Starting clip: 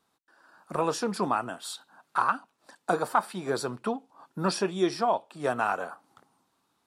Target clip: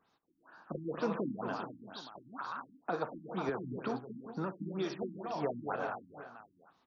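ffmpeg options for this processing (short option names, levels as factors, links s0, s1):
-filter_complex "[0:a]alimiter=limit=0.0708:level=0:latency=1:release=321,asettb=1/sr,asplit=3[s0][s1][s2];[s0]atrim=end=3.494[s3];[s1]atrim=start=3.49:end=5.03,asetpts=PTS-STARTPTS,afade=t=in:d=0.004:c=qsin,afade=t=out:st=1.536:d=0.004:c=qsin,acrossover=split=220|740[s4][s5][s6];[s4]acompressor=threshold=0.00631:ratio=4[s7];[s5]acompressor=threshold=0.0158:ratio=4[s8];[s6]acompressor=threshold=0.00794:ratio=4[s9];[s7][s8][s9]amix=inputs=3:normalize=0[s10];[s2]atrim=start=5.026[s11];[s3][s10]acrossfade=d=0.004:c1=hsin:c2=qsin[s12];[s12][s11]acrossfade=d=0.004:c1=qsin:c2=hsin,aecho=1:1:58|231|287|395|426|762:0.178|0.422|0.237|0.251|0.141|0.126,afftfilt=real='re*lt(b*sr/1024,310*pow(7000/310,0.5+0.5*sin(2*PI*2.1*pts/sr)))':imag='im*lt(b*sr/1024,310*pow(7000/310,0.5+0.5*sin(2*PI*2.1*pts/sr)))':win_size=1024:overlap=0.75"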